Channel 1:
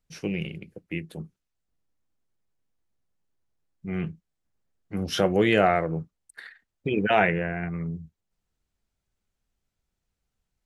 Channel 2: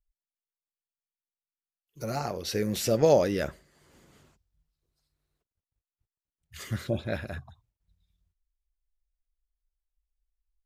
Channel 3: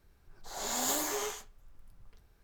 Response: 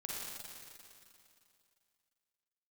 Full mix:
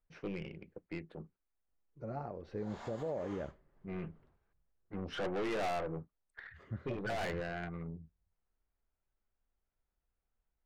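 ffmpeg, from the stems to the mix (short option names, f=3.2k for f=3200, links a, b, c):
-filter_complex "[0:a]lowpass=1.7k,equalizer=f=140:w=0.63:g=-9.5,aeval=exprs='(tanh(35.5*val(0)+0.35)-tanh(0.35))/35.5':c=same,volume=-2dB[a];[1:a]lowpass=1.1k,volume=-8.5dB[b];[2:a]lowpass=2k,lowshelf=f=340:g=-8.5,adelay=2100,volume=-8dB[c];[a][b][c]amix=inputs=3:normalize=0,alimiter=level_in=5.5dB:limit=-24dB:level=0:latency=1:release=243,volume=-5.5dB"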